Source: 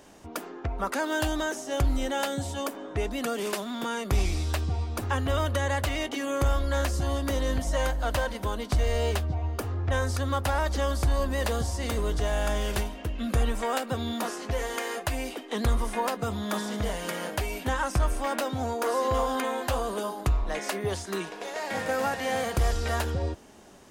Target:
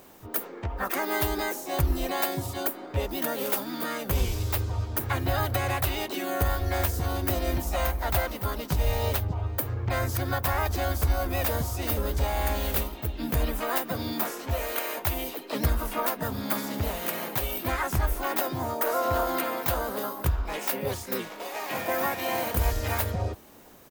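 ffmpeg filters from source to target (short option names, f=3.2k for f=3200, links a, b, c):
-filter_complex "[0:a]aexciter=amount=7.6:drive=8:freq=12k,asplit=4[a][b][c][d];[b]asetrate=29433,aresample=44100,atempo=1.49831,volume=-13dB[e];[c]asetrate=55563,aresample=44100,atempo=0.793701,volume=-6dB[f];[d]asetrate=58866,aresample=44100,atempo=0.749154,volume=-2dB[g];[a][e][f][g]amix=inputs=4:normalize=0,volume=-3.5dB"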